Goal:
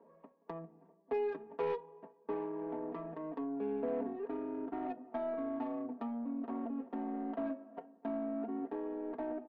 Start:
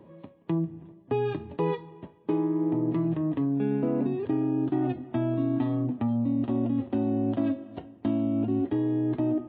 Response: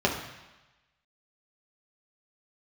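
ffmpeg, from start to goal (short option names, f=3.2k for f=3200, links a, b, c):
-af "highpass=540,lowpass=2.1k,adynamicsmooth=sensitivity=2.5:basefreq=1.2k,asoftclip=type=tanh:threshold=-27dB,aecho=1:1:4.4:0.94,volume=-3dB"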